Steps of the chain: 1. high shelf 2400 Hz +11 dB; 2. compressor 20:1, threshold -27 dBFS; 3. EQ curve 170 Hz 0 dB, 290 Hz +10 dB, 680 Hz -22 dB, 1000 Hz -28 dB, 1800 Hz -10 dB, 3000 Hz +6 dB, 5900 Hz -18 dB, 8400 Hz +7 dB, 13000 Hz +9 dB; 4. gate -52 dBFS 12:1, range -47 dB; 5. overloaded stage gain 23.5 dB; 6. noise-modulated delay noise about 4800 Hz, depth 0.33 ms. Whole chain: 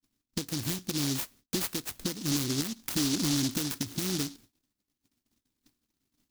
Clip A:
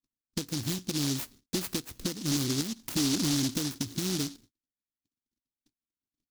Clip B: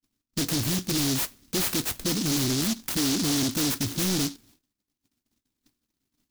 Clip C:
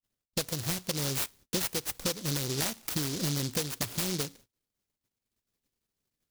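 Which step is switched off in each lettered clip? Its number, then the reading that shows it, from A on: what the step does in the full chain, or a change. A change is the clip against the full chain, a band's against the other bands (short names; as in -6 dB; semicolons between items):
1, 2 kHz band -1.5 dB; 2, mean gain reduction 12.0 dB; 3, momentary loudness spread change -4 LU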